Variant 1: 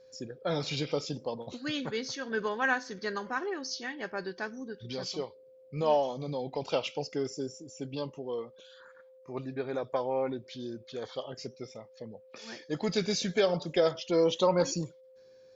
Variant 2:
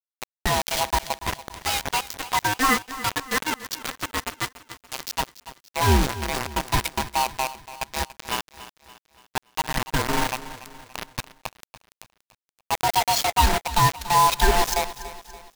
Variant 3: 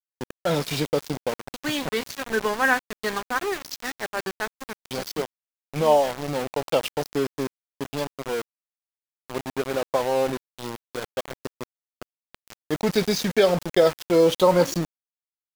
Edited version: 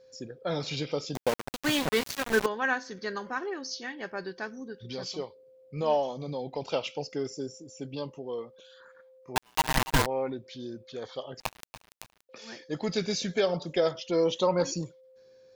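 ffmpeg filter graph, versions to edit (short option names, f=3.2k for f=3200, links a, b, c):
-filter_complex "[1:a]asplit=2[a][b];[0:a]asplit=4[c][d][e][f];[c]atrim=end=1.152[g];[2:a]atrim=start=1.148:end=2.462[h];[d]atrim=start=2.458:end=9.362[i];[a]atrim=start=9.358:end=10.062[j];[e]atrim=start=10.058:end=11.402[k];[b]atrim=start=11.398:end=12.292[l];[f]atrim=start=12.288[m];[g][h]acrossfade=d=0.004:c1=hsin:c2=hsin[n];[n][i]acrossfade=d=0.004:c1=hsin:c2=hsin[o];[o][j]acrossfade=d=0.004:c1=hsin:c2=hsin[p];[p][k]acrossfade=d=0.004:c1=hsin:c2=hsin[q];[q][l]acrossfade=d=0.004:c1=hsin:c2=hsin[r];[r][m]acrossfade=d=0.004:c1=hsin:c2=hsin"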